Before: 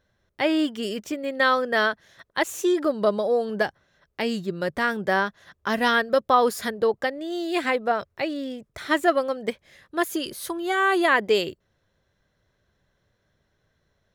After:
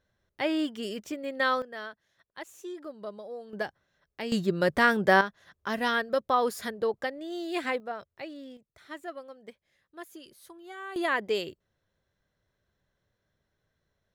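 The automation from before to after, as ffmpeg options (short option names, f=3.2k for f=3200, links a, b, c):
-af "asetnsamples=n=441:p=0,asendcmd='1.62 volume volume -18dB;3.53 volume volume -9dB;4.32 volume volume 2dB;5.21 volume volume -6.5dB;7.8 volume volume -13dB;8.57 volume volume -19.5dB;10.96 volume volume -8dB',volume=-6dB"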